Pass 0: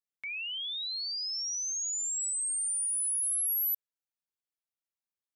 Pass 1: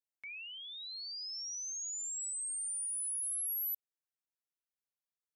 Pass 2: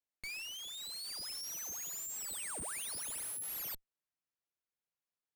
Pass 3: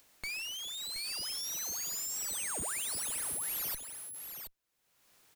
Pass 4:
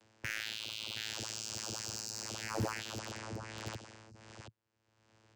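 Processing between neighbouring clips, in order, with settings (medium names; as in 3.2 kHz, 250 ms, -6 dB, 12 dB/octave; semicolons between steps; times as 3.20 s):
peaking EQ 3.3 kHz -4 dB; trim -6.5 dB
square wave that keeps the level; treble shelf 4.4 kHz -9.5 dB; Chebyshev shaper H 4 -8 dB, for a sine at -37 dBFS; trim +1 dB
delay 724 ms -8 dB; upward compressor, threshold -49 dBFS; trim +4.5 dB
vocoder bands 8, saw 110 Hz; in parallel at -11.5 dB: bit crusher 5-bit; on the sum: hard clipper -25 dBFS, distortion -20 dB; trim -1 dB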